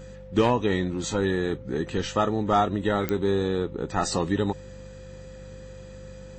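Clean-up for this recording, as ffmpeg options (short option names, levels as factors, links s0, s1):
-af "adeclick=t=4,bandreject=f=48.9:t=h:w=4,bandreject=f=97.8:t=h:w=4,bandreject=f=146.7:t=h:w=4,bandreject=f=195.6:t=h:w=4,bandreject=f=520:w=30"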